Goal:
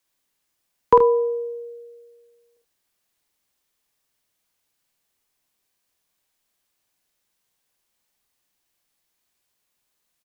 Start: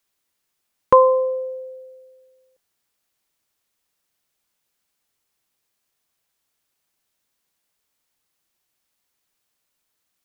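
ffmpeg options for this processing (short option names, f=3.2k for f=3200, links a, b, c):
-af "bandreject=f=1.4k:w=21,afreqshift=-46,aecho=1:1:50|78:0.562|0.299,volume=-1dB"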